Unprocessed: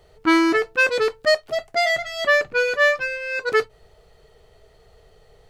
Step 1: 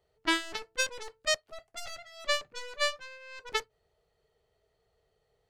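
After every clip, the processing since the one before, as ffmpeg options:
-af "highpass=f=65:p=1,aeval=exprs='0.501*(cos(1*acos(clip(val(0)/0.501,-1,1)))-cos(1*PI/2))+0.2*(cos(3*acos(clip(val(0)/0.501,-1,1)))-cos(3*PI/2))+0.0126*(cos(8*acos(clip(val(0)/0.501,-1,1)))-cos(8*PI/2))':c=same,volume=-5.5dB"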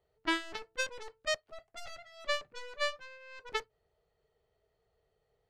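-af "highshelf=f=4.7k:g=-9.5,volume=-2.5dB"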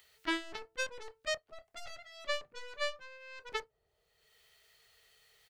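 -filter_complex "[0:a]acrossover=split=1700[a][b];[a]asplit=2[c][d];[d]adelay=27,volume=-9.5dB[e];[c][e]amix=inputs=2:normalize=0[f];[b]acompressor=mode=upward:threshold=-43dB:ratio=2.5[g];[f][g]amix=inputs=2:normalize=0,volume=-2.5dB"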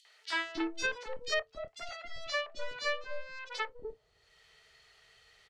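-filter_complex "[0:a]aeval=exprs='0.126*sin(PI/2*1.78*val(0)/0.126)':c=same,lowpass=5.5k,acrossover=split=500|3400[a][b][c];[b]adelay=50[d];[a]adelay=300[e];[e][d][c]amix=inputs=3:normalize=0,volume=-2dB"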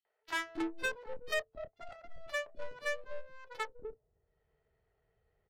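-af "bandreject=f=1.2k:w=13,adynamicsmooth=sensitivity=5.5:basefreq=560,volume=-1.5dB"

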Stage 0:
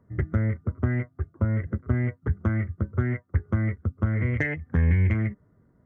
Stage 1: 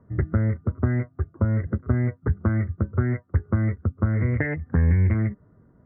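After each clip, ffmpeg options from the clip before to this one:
-filter_complex "[0:a]lowpass=f=1.8k:w=0.5412,lowpass=f=1.8k:w=1.3066,asplit=2[a][b];[b]acompressor=threshold=-30dB:ratio=6,volume=-1dB[c];[a][c]amix=inputs=2:normalize=0"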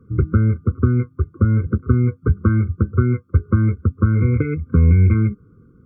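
-af "asuperstop=centerf=700:order=4:qfactor=2.1,afftfilt=real='re*eq(mod(floor(b*sr/1024/520),2),0)':imag='im*eq(mod(floor(b*sr/1024/520),2),0)':win_size=1024:overlap=0.75,volume=6.5dB"

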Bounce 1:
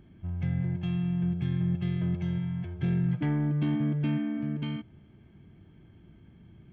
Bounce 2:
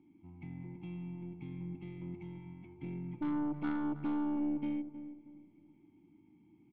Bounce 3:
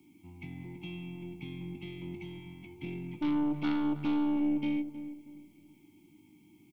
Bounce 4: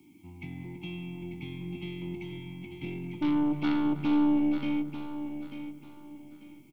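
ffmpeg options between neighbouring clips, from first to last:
-filter_complex "[0:a]asplit=3[a][b][c];[a]bandpass=f=300:t=q:w=8,volume=0dB[d];[b]bandpass=f=870:t=q:w=8,volume=-6dB[e];[c]bandpass=f=2.24k:t=q:w=8,volume=-9dB[f];[d][e][f]amix=inputs=3:normalize=0,aeval=exprs='0.0562*(cos(1*acos(clip(val(0)/0.0562,-1,1)))-cos(1*PI/2))+0.0126*(cos(3*acos(clip(val(0)/0.0562,-1,1)))-cos(3*PI/2))+0.0112*(cos(5*acos(clip(val(0)/0.0562,-1,1)))-cos(5*PI/2))+0.00316*(cos(6*acos(clip(val(0)/0.0562,-1,1)))-cos(6*PI/2))':c=same,asplit=2[g][h];[h]adelay=316,lowpass=f=910:p=1,volume=-10.5dB,asplit=2[i][j];[j]adelay=316,lowpass=f=910:p=1,volume=0.35,asplit=2[k][l];[l]adelay=316,lowpass=f=910:p=1,volume=0.35,asplit=2[m][n];[n]adelay=316,lowpass=f=910:p=1,volume=0.35[o];[g][i][k][m][o]amix=inputs=5:normalize=0,volume=1dB"
-filter_complex "[0:a]asplit=2[a][b];[b]adelay=20,volume=-10.5dB[c];[a][c]amix=inputs=2:normalize=0,acrossover=split=140|660|1200[d][e][f][g];[g]aexciter=amount=2.4:drive=9.3:freq=2.3k[h];[d][e][f][h]amix=inputs=4:normalize=0,volume=3dB"
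-af "aecho=1:1:892|1784|2676:0.335|0.0938|0.0263,volume=3dB"

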